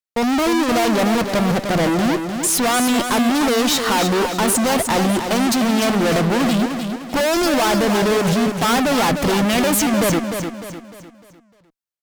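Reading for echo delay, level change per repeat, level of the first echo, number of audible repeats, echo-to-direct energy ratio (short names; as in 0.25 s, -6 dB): 0.302 s, -7.5 dB, -7.0 dB, 4, -6.0 dB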